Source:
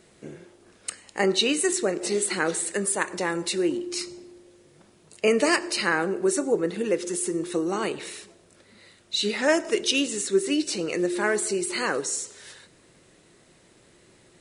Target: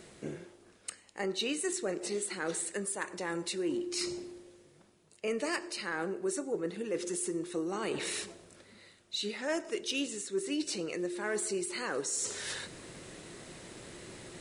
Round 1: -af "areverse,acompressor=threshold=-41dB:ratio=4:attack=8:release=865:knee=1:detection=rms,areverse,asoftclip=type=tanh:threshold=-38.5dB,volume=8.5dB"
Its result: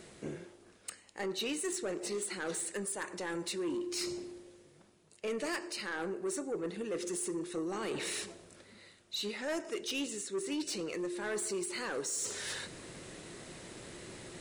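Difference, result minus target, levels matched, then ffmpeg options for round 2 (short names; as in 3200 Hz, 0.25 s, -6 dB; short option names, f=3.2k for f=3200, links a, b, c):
soft clip: distortion +16 dB
-af "areverse,acompressor=threshold=-41dB:ratio=4:attack=8:release=865:knee=1:detection=rms,areverse,asoftclip=type=tanh:threshold=-27.5dB,volume=8.5dB"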